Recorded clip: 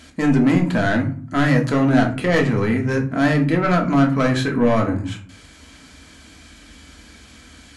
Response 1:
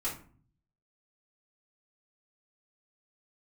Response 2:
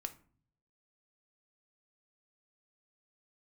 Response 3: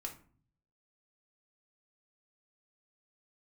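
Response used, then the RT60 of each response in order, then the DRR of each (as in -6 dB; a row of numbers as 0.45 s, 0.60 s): 3; 0.45 s, 0.45 s, 0.45 s; -9.0 dB, 7.5 dB, 1.0 dB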